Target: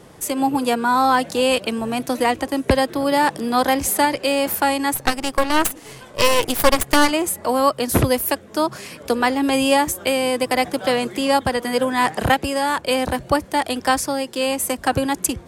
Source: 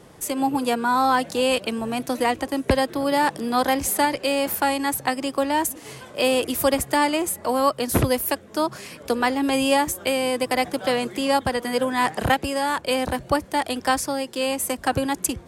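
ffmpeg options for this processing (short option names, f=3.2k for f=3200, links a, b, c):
-filter_complex "[0:a]asplit=3[a][b][c];[a]afade=t=out:st=4.95:d=0.02[d];[b]aeval=exprs='0.398*(cos(1*acos(clip(val(0)/0.398,-1,1)))-cos(1*PI/2))+0.158*(cos(4*acos(clip(val(0)/0.398,-1,1)))-cos(4*PI/2))+0.0158*(cos(7*acos(clip(val(0)/0.398,-1,1)))-cos(7*PI/2))':c=same,afade=t=in:st=4.95:d=0.02,afade=t=out:st=7.1:d=0.02[e];[c]afade=t=in:st=7.1:d=0.02[f];[d][e][f]amix=inputs=3:normalize=0,volume=3dB"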